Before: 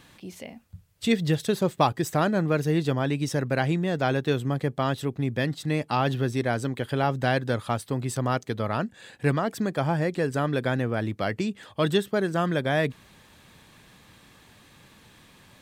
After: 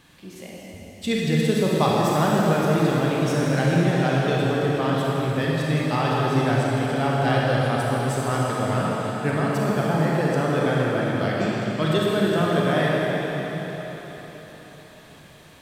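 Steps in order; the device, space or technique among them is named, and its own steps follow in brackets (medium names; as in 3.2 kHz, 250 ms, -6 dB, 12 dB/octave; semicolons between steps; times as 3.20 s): cathedral (reverberation RT60 4.6 s, pre-delay 29 ms, DRR -5 dB); trim -2 dB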